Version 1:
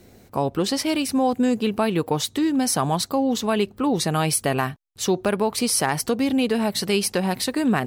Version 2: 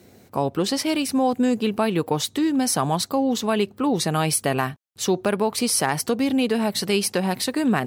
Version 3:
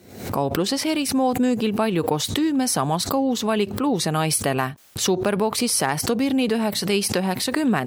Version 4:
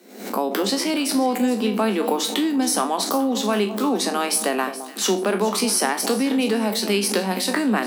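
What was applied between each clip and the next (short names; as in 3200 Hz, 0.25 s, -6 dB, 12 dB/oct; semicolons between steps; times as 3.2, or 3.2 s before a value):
HPF 89 Hz
backwards sustainer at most 83 dB/s
spectral trails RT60 0.31 s; Chebyshev high-pass 190 Hz, order 10; on a send: echo with dull and thin repeats by turns 0.212 s, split 940 Hz, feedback 57%, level -10.5 dB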